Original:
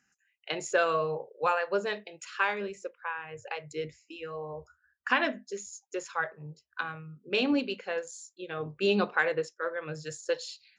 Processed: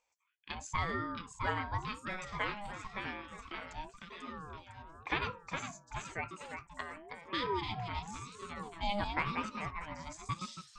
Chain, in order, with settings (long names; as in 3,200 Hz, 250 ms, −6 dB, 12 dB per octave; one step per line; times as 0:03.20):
delay with pitch and tempo change per echo 701 ms, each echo +1 semitone, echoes 3, each echo −6 dB
ring modulator whose carrier an LFO sweeps 580 Hz, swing 30%, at 0.95 Hz
level −5.5 dB